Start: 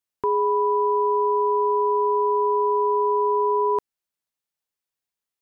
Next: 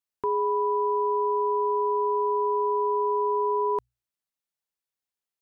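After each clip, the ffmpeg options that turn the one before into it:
-af "bandreject=f=60:t=h:w=6,bandreject=f=120:t=h:w=6,volume=0.631"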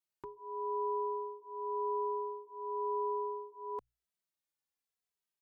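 -filter_complex "[0:a]alimiter=level_in=1.58:limit=0.0631:level=0:latency=1:release=256,volume=0.631,asplit=2[s0][s1];[s1]adelay=2.7,afreqshift=-0.95[s2];[s0][s2]amix=inputs=2:normalize=1"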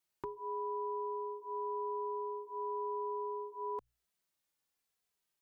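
-af "acompressor=threshold=0.00794:ratio=6,volume=2"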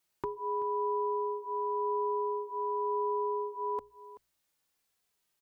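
-af "aecho=1:1:381:0.141,volume=2"

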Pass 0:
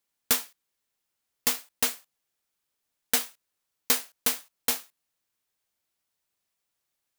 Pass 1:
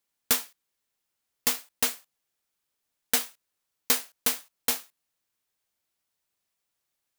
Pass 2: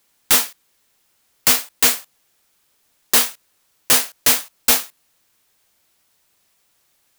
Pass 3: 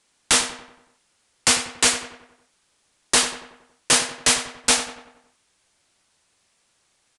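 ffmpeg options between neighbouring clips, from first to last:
-af anull
-af "aeval=exprs='0.398*sin(PI/2*5.01*val(0)/0.398)':c=same"
-filter_complex "[0:a]asplit=2[s0][s1];[s1]adelay=93,lowpass=f=2900:p=1,volume=0.335,asplit=2[s2][s3];[s3]adelay=93,lowpass=f=2900:p=1,volume=0.52,asplit=2[s4][s5];[s5]adelay=93,lowpass=f=2900:p=1,volume=0.52,asplit=2[s6][s7];[s7]adelay=93,lowpass=f=2900:p=1,volume=0.52,asplit=2[s8][s9];[s9]adelay=93,lowpass=f=2900:p=1,volume=0.52,asplit=2[s10][s11];[s11]adelay=93,lowpass=f=2900:p=1,volume=0.52[s12];[s0][s2][s4][s6][s8][s10][s12]amix=inputs=7:normalize=0,aresample=22050,aresample=44100"

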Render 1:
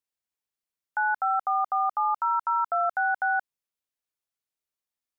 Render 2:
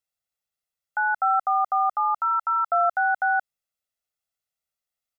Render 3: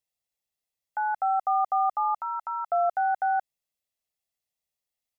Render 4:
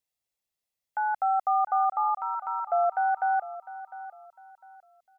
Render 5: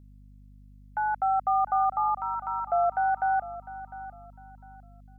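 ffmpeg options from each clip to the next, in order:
-af "aecho=1:1:1.5:0.67"
-af "equalizer=f=1400:t=o:w=0.27:g=-15"
-af "aecho=1:1:703|1406|2109:0.178|0.0498|0.0139"
-af "aeval=exprs='val(0)+0.00316*(sin(2*PI*50*n/s)+sin(2*PI*2*50*n/s)/2+sin(2*PI*3*50*n/s)/3+sin(2*PI*4*50*n/s)/4+sin(2*PI*5*50*n/s)/5)':c=same"

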